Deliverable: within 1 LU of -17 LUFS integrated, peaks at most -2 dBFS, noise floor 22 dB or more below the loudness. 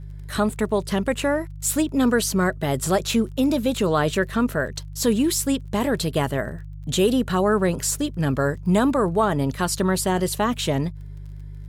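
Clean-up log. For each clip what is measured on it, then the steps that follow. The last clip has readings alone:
tick rate 22 per s; hum 50 Hz; highest harmonic 150 Hz; hum level -34 dBFS; loudness -22.5 LUFS; peak level -8.5 dBFS; loudness target -17.0 LUFS
-> de-click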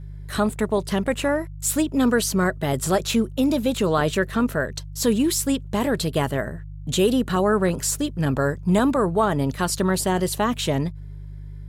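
tick rate 0.26 per s; hum 50 Hz; highest harmonic 150 Hz; hum level -34 dBFS
-> de-hum 50 Hz, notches 3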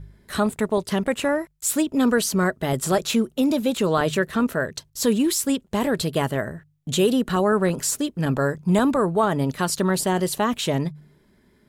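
hum not found; loudness -22.5 LUFS; peak level -8.5 dBFS; loudness target -17.0 LUFS
-> trim +5.5 dB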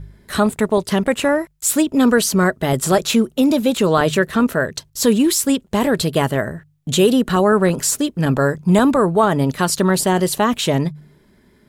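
loudness -17.0 LUFS; peak level -3.0 dBFS; noise floor -55 dBFS

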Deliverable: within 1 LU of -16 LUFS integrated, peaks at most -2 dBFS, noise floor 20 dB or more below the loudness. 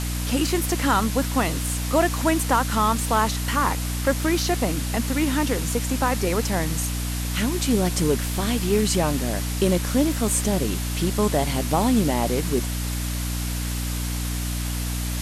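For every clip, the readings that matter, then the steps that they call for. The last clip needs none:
hum 60 Hz; highest harmonic 300 Hz; hum level -25 dBFS; noise floor -27 dBFS; noise floor target -43 dBFS; loudness -23.0 LUFS; peak level -7.0 dBFS; loudness target -16.0 LUFS
-> hum notches 60/120/180/240/300 Hz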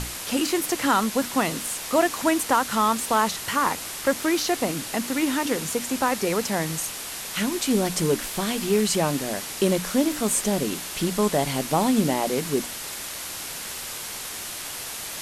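hum not found; noise floor -35 dBFS; noise floor target -45 dBFS
-> noise print and reduce 10 dB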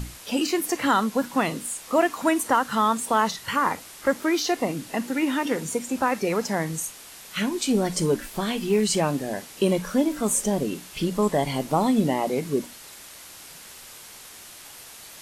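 noise floor -44 dBFS; noise floor target -45 dBFS
-> noise print and reduce 6 dB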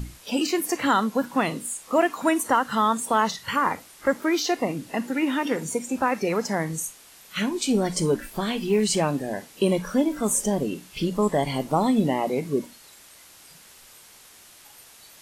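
noise floor -50 dBFS; loudness -24.5 LUFS; peak level -8.5 dBFS; loudness target -16.0 LUFS
-> trim +8.5 dB; peak limiter -2 dBFS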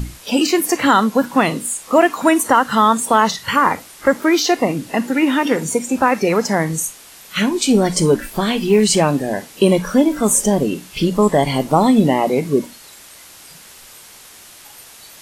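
loudness -16.5 LUFS; peak level -2.0 dBFS; noise floor -42 dBFS

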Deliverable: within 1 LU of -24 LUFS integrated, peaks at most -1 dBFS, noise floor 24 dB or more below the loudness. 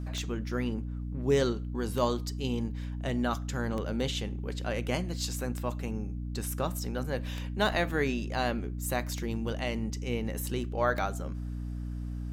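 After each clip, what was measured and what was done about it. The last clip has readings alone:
clicks found 7; hum 60 Hz; highest harmonic 300 Hz; hum level -33 dBFS; loudness -32.5 LUFS; peak level -13.5 dBFS; loudness target -24.0 LUFS
-> de-click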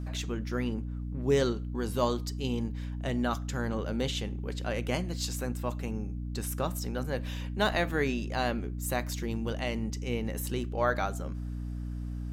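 clicks found 0; hum 60 Hz; highest harmonic 300 Hz; hum level -33 dBFS
-> hum notches 60/120/180/240/300 Hz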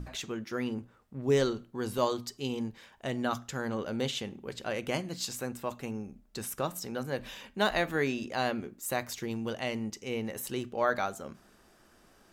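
hum not found; loudness -33.5 LUFS; peak level -13.0 dBFS; loudness target -24.0 LUFS
-> trim +9.5 dB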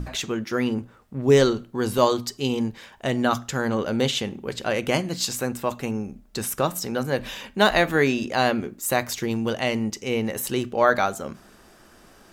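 loudness -24.0 LUFS; peak level -3.5 dBFS; noise floor -53 dBFS

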